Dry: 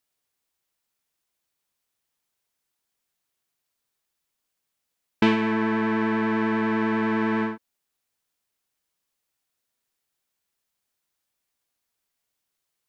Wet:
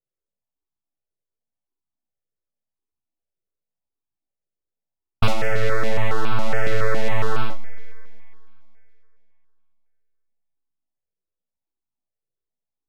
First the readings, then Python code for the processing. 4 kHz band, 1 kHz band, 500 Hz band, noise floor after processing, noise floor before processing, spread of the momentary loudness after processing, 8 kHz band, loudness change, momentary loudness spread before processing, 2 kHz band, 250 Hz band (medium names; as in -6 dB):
+3.5 dB, -0.5 dB, +2.0 dB, under -85 dBFS, -81 dBFS, 5 LU, no reading, -1.5 dB, 4 LU, +0.5 dB, -12.0 dB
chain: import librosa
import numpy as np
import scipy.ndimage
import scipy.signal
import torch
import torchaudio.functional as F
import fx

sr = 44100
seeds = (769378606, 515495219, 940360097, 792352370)

y = scipy.signal.sosfilt(scipy.signal.butter(4, 48.0, 'highpass', fs=sr, output='sos'), x)
y = fx.env_lowpass(y, sr, base_hz=320.0, full_db=-21.0)
y = fx.peak_eq(y, sr, hz=3000.0, db=-6.0, octaves=0.27)
y = np.abs(y)
y = fx.doubler(y, sr, ms=16.0, db=-7)
y = fx.rev_schroeder(y, sr, rt60_s=3.0, comb_ms=31, drr_db=18.0)
y = fx.phaser_held(y, sr, hz=7.2, low_hz=250.0, high_hz=1900.0)
y = y * librosa.db_to_amplitude(5.5)